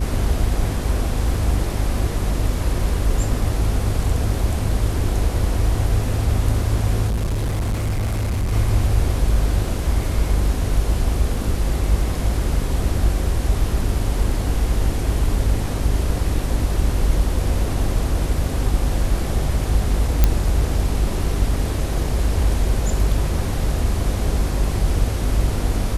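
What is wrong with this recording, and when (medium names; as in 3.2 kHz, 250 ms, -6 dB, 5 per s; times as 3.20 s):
hum 50 Hz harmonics 8 -24 dBFS
7.07–8.53 s: clipped -18 dBFS
20.24 s: pop -1 dBFS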